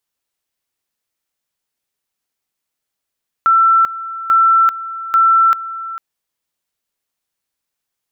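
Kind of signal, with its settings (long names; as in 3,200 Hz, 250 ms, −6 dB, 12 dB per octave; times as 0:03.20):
tone at two levels in turn 1,340 Hz −7.5 dBFS, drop 15.5 dB, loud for 0.39 s, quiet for 0.45 s, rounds 3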